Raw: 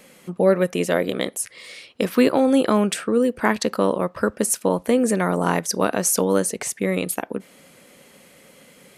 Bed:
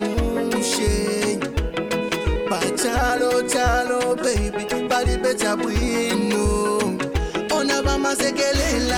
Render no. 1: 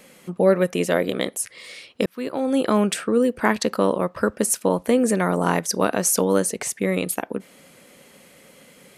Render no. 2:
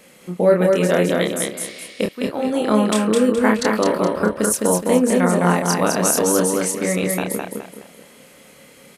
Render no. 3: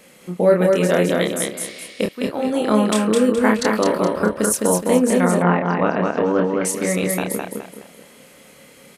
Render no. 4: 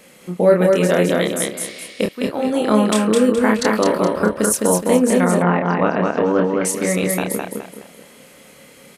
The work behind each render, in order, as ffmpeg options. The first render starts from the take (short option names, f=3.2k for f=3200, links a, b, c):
-filter_complex "[0:a]asplit=2[a][b];[a]atrim=end=2.06,asetpts=PTS-STARTPTS,afade=t=out:st=2.056:d=0.004:c=hsin[c];[b]atrim=start=2.06,asetpts=PTS-STARTPTS,afade=t=in:d=0.74[d];[c][d]concat=n=2:v=0:a=1"
-filter_complex "[0:a]asplit=2[a][b];[b]adelay=28,volume=-4dB[c];[a][c]amix=inputs=2:normalize=0,aecho=1:1:210|420|630|840:0.708|0.241|0.0818|0.0278"
-filter_complex "[0:a]asettb=1/sr,asplit=3[a][b][c];[a]atrim=end=5.424[d];[b]atrim=start=5.42:end=6.65,asetpts=PTS-STARTPTS,afade=t=in:d=0.004:c=qsin,afade=t=out:st=1.226:d=0.004:c=qsin,lowpass=f=2.7k:w=0.5412,lowpass=f=2.7k:w=1.3066[e];[c]atrim=start=6.646[f];[d][e]acrossfade=d=0.004:c1=hsin:c2=qsin[g];[g][f]acrossfade=d=0.004:c1=qsin:c2=hsin"
-af "volume=1.5dB,alimiter=limit=-3dB:level=0:latency=1"